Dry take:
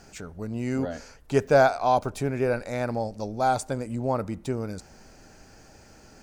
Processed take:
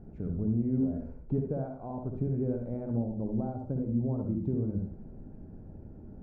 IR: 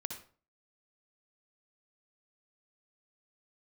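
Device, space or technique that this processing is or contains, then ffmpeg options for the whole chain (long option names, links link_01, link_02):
television next door: -filter_complex "[0:a]acompressor=threshold=-33dB:ratio=4,lowpass=300[link_01];[1:a]atrim=start_sample=2205[link_02];[link_01][link_02]afir=irnorm=-1:irlink=0,volume=8.5dB"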